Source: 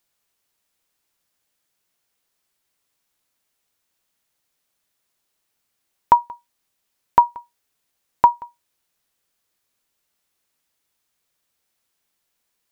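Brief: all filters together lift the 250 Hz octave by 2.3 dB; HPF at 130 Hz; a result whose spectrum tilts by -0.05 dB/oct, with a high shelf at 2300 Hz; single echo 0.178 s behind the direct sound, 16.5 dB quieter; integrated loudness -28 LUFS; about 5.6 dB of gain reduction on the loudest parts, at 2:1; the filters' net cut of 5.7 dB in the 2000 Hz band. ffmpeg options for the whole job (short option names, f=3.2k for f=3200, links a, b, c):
-af "highpass=130,equalizer=f=250:t=o:g=4,equalizer=f=2k:t=o:g=-5,highshelf=f=2.3k:g=-6.5,acompressor=threshold=-19dB:ratio=2,aecho=1:1:178:0.15,volume=-1dB"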